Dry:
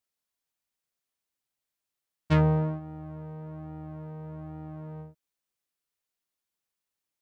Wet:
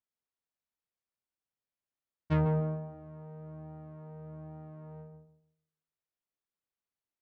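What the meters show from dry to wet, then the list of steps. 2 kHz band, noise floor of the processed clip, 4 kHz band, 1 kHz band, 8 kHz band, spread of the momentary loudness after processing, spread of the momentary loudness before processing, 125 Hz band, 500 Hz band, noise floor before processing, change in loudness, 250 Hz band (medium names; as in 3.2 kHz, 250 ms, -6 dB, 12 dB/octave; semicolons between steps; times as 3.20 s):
-8.0 dB, under -85 dBFS, under -10 dB, -6.0 dB, no reading, 19 LU, 18 LU, -5.0 dB, -4.0 dB, under -85 dBFS, -3.5 dB, -5.0 dB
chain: low-pass 1.9 kHz 6 dB/octave; on a send: filtered feedback delay 146 ms, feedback 29%, low-pass 910 Hz, level -4.5 dB; on the sum: trim -5.5 dB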